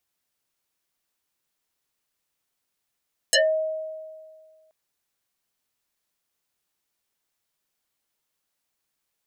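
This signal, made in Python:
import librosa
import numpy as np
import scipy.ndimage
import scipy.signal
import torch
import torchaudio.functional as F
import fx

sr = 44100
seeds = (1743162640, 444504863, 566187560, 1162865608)

y = fx.fm2(sr, length_s=1.38, level_db=-14.0, carrier_hz=631.0, ratio=1.87, index=9.3, index_s=0.2, decay_s=1.87, shape='exponential')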